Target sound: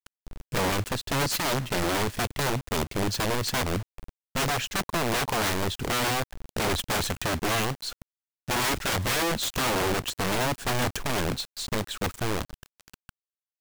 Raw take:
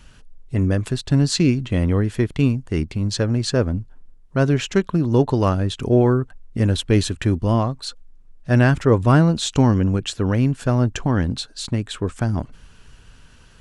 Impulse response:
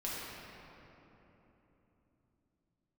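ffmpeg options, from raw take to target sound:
-af "acrusher=bits=5:mix=0:aa=0.000001,aeval=exprs='(mod(7.08*val(0)+1,2)-1)/7.08':c=same,volume=-4dB"

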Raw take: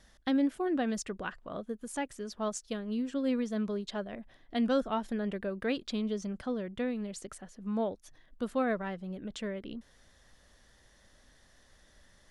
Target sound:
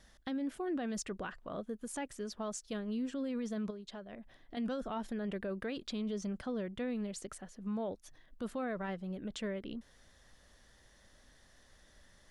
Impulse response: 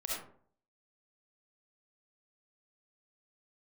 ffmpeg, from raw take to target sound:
-filter_complex "[0:a]alimiter=level_in=5.5dB:limit=-24dB:level=0:latency=1:release=19,volume=-5.5dB,asettb=1/sr,asplit=3[a][b][c];[a]atrim=end=3.704[d];[b]atrim=start=3.7:end=4.57,asetpts=PTS-STARTPTS,afade=t=in:d=0.004:c=qsin,afade=t=out:st=0.866:d=0.004:c=qsin,acompressor=threshold=-43dB:ratio=6[e];[c]atrim=start=4.566[f];[d][e]acrossfade=d=0.004:c1=hsin:c2=qsin[g];[g][f]acrossfade=d=0.004:c1=qsin:c2=hsin,volume=-1dB"

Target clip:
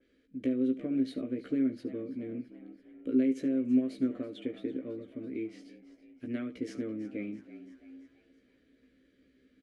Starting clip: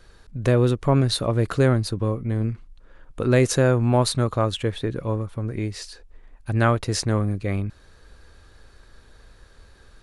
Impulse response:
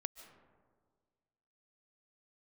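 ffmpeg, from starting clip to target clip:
-filter_complex "[0:a]equalizer=f=125:t=o:w=1:g=-10,equalizer=f=500:t=o:w=1:g=8,equalizer=f=2k:t=o:w=1:g=-4,equalizer=f=4k:t=o:w=1:g=-7,asplit=2[a][b];[b]asplit=5[c][d][e][f][g];[c]adelay=347,afreqshift=79,volume=-16.5dB[h];[d]adelay=694,afreqshift=158,volume=-22dB[i];[e]adelay=1041,afreqshift=237,volume=-27.5dB[j];[f]adelay=1388,afreqshift=316,volume=-33dB[k];[g]adelay=1735,afreqshift=395,volume=-38.6dB[l];[h][i][j][k][l]amix=inputs=5:normalize=0[m];[a][m]amix=inputs=2:normalize=0,acompressor=threshold=-17dB:ratio=10,asplit=2[n][o];[o]adelay=16,volume=-5dB[p];[n][p]amix=inputs=2:normalize=0,asetrate=45938,aresample=44100,asplit=3[q][r][s];[q]bandpass=f=270:t=q:w=8,volume=0dB[t];[r]bandpass=f=2.29k:t=q:w=8,volume=-6dB[u];[s]bandpass=f=3.01k:t=q:w=8,volume=-9dB[v];[t][u][v]amix=inputs=3:normalize=0,asplit=2[w][x];[x]aecho=0:1:72:0.141[y];[w][y]amix=inputs=2:normalize=0,adynamicequalizer=threshold=0.00112:dfrequency=3000:dqfactor=0.7:tfrequency=3000:tqfactor=0.7:attack=5:release=100:ratio=0.375:range=2:mode=cutabove:tftype=highshelf,volume=2dB"

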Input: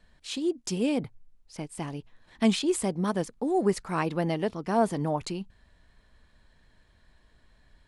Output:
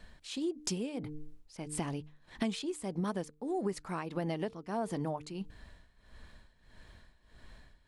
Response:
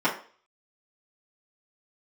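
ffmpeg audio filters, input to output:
-af "bandreject=f=150.7:t=h:w=4,bandreject=f=301.4:t=h:w=4,bandreject=f=452.1:t=h:w=4,tremolo=f=1.6:d=0.82,acompressor=threshold=-40dB:ratio=6,volume=7.5dB"

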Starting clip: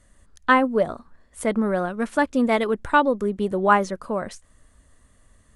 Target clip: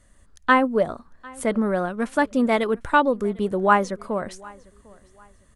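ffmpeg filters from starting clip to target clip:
-af "aecho=1:1:750|1500:0.0631|0.0189"

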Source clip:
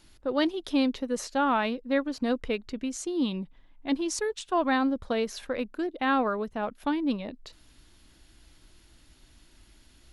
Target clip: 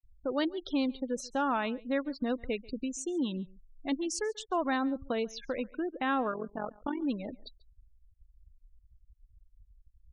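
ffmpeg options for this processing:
-filter_complex "[0:a]asplit=3[a][b][c];[a]afade=t=out:st=6.31:d=0.02[d];[b]tremolo=f=45:d=0.824,afade=t=in:st=6.31:d=0.02,afade=t=out:st=7.01:d=0.02[e];[c]afade=t=in:st=7.01:d=0.02[f];[d][e][f]amix=inputs=3:normalize=0,asplit=2[g][h];[h]acompressor=threshold=-34dB:ratio=8,volume=3dB[i];[g][i]amix=inputs=2:normalize=0,afftfilt=real='re*gte(hypot(re,im),0.0282)':imag='im*gte(hypot(re,im),0.0282)':win_size=1024:overlap=0.75,aecho=1:1:139:0.0708,volume=-7.5dB"

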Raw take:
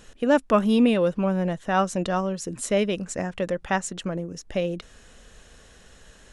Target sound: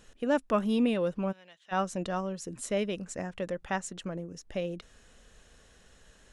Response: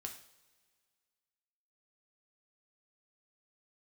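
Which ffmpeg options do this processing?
-filter_complex "[0:a]asplit=3[a][b][c];[a]afade=t=out:st=1.31:d=0.02[d];[b]bandpass=f=3.4k:t=q:w=1.9:csg=0,afade=t=in:st=1.31:d=0.02,afade=t=out:st=1.71:d=0.02[e];[c]afade=t=in:st=1.71:d=0.02[f];[d][e][f]amix=inputs=3:normalize=0,volume=-7.5dB"

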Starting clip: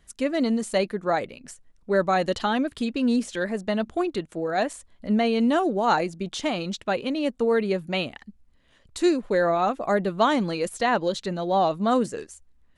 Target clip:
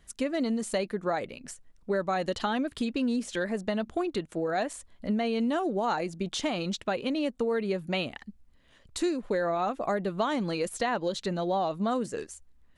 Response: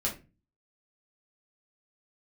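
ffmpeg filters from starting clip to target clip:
-af "acompressor=threshold=-26dB:ratio=4"

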